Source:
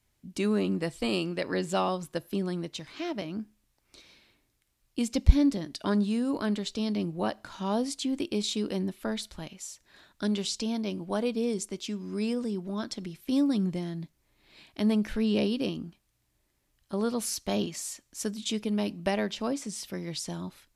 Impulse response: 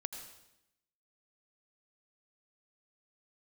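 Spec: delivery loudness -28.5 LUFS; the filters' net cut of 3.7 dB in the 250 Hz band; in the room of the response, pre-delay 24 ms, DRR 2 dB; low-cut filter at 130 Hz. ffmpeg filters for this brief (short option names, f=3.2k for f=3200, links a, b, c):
-filter_complex "[0:a]highpass=130,equalizer=f=250:t=o:g=-4,asplit=2[a][b];[1:a]atrim=start_sample=2205,adelay=24[c];[b][c]afir=irnorm=-1:irlink=0,volume=-1dB[d];[a][d]amix=inputs=2:normalize=0,volume=2.5dB"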